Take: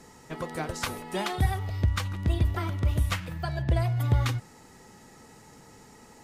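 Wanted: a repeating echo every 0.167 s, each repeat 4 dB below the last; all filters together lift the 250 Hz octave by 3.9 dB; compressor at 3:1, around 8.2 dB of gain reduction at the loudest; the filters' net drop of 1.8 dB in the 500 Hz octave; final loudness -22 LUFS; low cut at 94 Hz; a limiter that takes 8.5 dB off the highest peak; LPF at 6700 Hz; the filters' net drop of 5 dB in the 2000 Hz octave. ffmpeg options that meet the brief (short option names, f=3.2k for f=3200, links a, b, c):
-af "highpass=94,lowpass=6.7k,equalizer=f=250:t=o:g=8,equalizer=f=500:t=o:g=-5.5,equalizer=f=2k:t=o:g=-6,acompressor=threshold=-33dB:ratio=3,alimiter=level_in=5dB:limit=-24dB:level=0:latency=1,volume=-5dB,aecho=1:1:167|334|501|668|835|1002|1169|1336|1503:0.631|0.398|0.25|0.158|0.0994|0.0626|0.0394|0.0249|0.0157,volume=13dB"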